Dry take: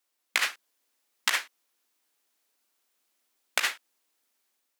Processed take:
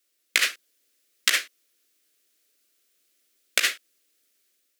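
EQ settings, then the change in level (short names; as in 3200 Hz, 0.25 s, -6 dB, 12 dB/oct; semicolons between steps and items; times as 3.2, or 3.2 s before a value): fixed phaser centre 370 Hz, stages 4; +6.5 dB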